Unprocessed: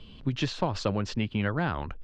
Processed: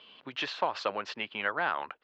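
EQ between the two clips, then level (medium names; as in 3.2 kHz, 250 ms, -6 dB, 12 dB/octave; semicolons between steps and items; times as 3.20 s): high-pass 740 Hz 12 dB/octave; low-pass 3.2 kHz 12 dB/octave; +4.0 dB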